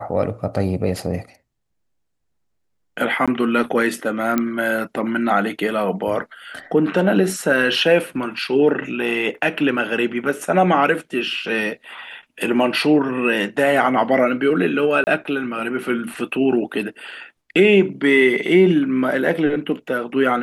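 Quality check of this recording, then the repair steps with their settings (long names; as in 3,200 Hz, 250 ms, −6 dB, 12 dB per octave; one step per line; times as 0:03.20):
0:03.26–0:03.28: drop-out 16 ms
0:04.38: click −6 dBFS
0:15.04–0:15.07: drop-out 29 ms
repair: click removal
repair the gap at 0:03.26, 16 ms
repair the gap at 0:15.04, 29 ms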